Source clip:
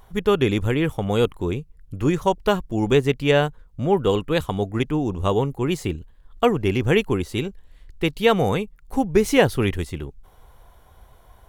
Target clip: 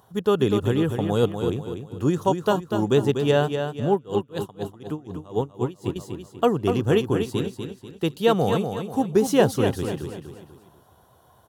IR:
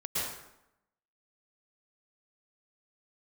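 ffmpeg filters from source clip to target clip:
-filter_complex "[0:a]highpass=f=96:w=0.5412,highpass=f=96:w=1.3066,equalizer=f=2.2k:w=3.1:g=-14.5,aecho=1:1:244|488|732|976:0.447|0.17|0.0645|0.0245,asettb=1/sr,asplit=3[a][b][c];[a]atrim=end=3.934[d];[b]atrim=start=3.93:end=5.96,asetpts=PTS-STARTPTS,afade=t=in:d=0.004:c=qsin,afade=t=out:st=2.026:d=0.004:c=qsin,aeval=exprs='val(0)*pow(10,-24*(0.5-0.5*cos(2*PI*4.1*n/s))/20)':c=same[e];[c]atrim=start=5.956[f];[d][e]acrossfade=d=0.004:c1=hsin:c2=qsin[g];[g][f]acrossfade=d=0.004:c1=qsin:c2=hsin,volume=-1.5dB"

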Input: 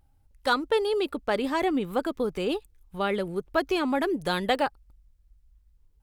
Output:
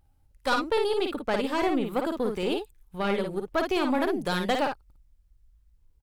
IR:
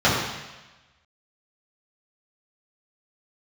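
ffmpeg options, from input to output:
-af "aeval=exprs='(tanh(7.94*val(0)+0.5)-tanh(0.5))/7.94':c=same,aecho=1:1:46|55:0.126|0.562,volume=1dB"

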